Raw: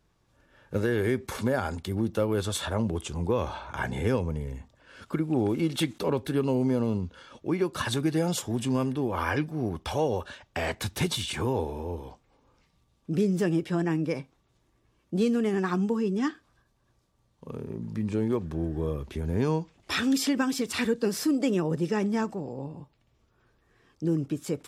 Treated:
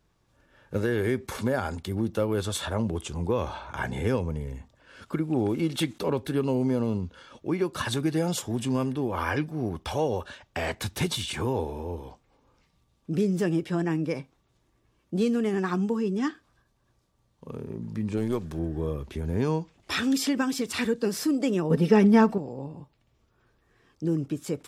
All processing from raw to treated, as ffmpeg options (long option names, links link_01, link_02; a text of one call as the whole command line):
ffmpeg -i in.wav -filter_complex "[0:a]asettb=1/sr,asplit=3[link_01][link_02][link_03];[link_01]atrim=end=18.174[link_04];[link_02]atrim=start=18.17:end=18.59,asetpts=PTS-STARTPTS,afade=type=in:duration=0.004:curve=qsin,afade=type=out:start_time=0.416:duration=0.004:curve=qsin,aeval=exprs='if(lt(val(0),0),0.708*val(0),val(0))':channel_layout=same,highshelf=frequency=3200:gain=10[link_05];[link_03]atrim=start=18.586[link_06];[link_04][link_05]acrossfade=duration=0.004:curve1=hsin:curve2=qsin[link_07];[link_07][link_06]acrossfade=duration=0.004:curve1=qsin:curve2=hsin,asettb=1/sr,asplit=3[link_08][link_09][link_10];[link_08]atrim=end=21.704[link_11];[link_09]atrim=start=21.7:end=22.38,asetpts=PTS-STARTPTS,afade=type=in:duration=0.004:curve=qsin,afade=type=out:start_time=0.676:duration=0.004:curve=qsin,equalizer=frequency=7200:width_type=o:width=0.58:gain=-11.5,aecho=1:1:4.4:0.57,atrim=end_sample=29988,acontrast=56[link_12];[link_10]atrim=start=22.376[link_13];[link_11][link_12]acrossfade=duration=0.004:curve1=hsin:curve2=qsin[link_14];[link_14][link_13]acrossfade=duration=0.004:curve1=qsin:curve2=hsin" out.wav